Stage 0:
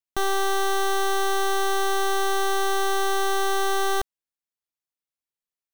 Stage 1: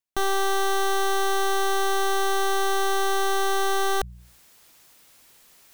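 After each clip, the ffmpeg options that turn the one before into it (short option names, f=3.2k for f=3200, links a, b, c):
-af "bandreject=f=60:t=h:w=6,bandreject=f=120:t=h:w=6,bandreject=f=180:t=h:w=6,areverse,acompressor=mode=upward:threshold=-26dB:ratio=2.5,areverse"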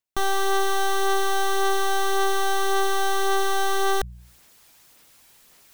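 -af "aphaser=in_gain=1:out_gain=1:delay=1.3:decay=0.25:speed=1.8:type=sinusoidal"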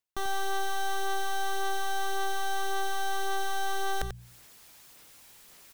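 -af "areverse,acompressor=threshold=-30dB:ratio=6,areverse,aecho=1:1:91:0.376"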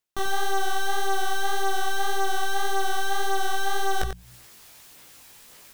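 -af "flanger=delay=15.5:depth=5.8:speed=1.8,volume=8dB"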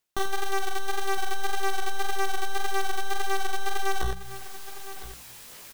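-af "asoftclip=type=tanh:threshold=-24.5dB,aecho=1:1:1009:0.2,volume=4dB"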